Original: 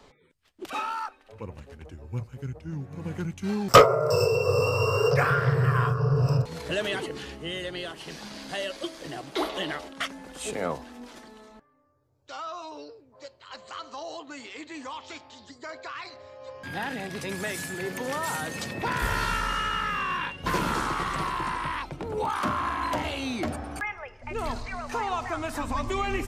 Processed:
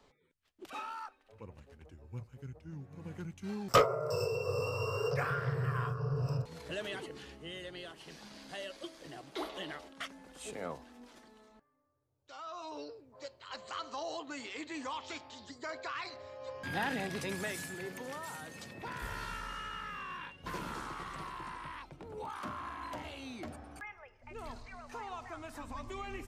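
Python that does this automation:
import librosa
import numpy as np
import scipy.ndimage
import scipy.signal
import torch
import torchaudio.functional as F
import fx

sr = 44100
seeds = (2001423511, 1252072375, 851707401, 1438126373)

y = fx.gain(x, sr, db=fx.line((12.35, -11.0), (12.78, -2.0), (17.01, -2.0), (18.32, -14.0)))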